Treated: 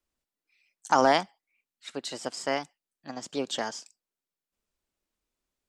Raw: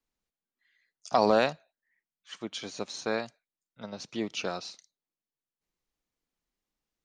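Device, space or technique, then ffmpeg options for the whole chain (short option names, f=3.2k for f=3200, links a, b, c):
nightcore: -af "asetrate=54684,aresample=44100,volume=2dB"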